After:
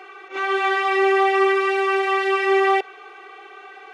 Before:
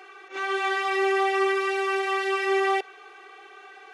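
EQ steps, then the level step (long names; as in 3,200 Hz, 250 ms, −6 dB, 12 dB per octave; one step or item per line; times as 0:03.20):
Butterworth band-reject 1,700 Hz, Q 7
bass and treble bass −1 dB, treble −8 dB
+6.0 dB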